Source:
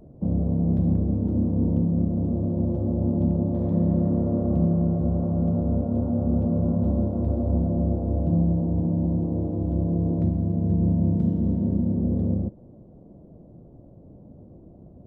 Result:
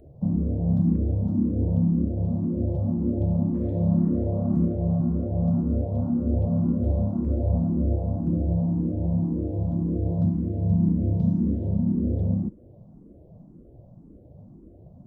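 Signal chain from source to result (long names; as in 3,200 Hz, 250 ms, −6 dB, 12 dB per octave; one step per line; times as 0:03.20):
bass and treble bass +3 dB, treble +4 dB
frequency shifter mixed with the dry sound +1.9 Hz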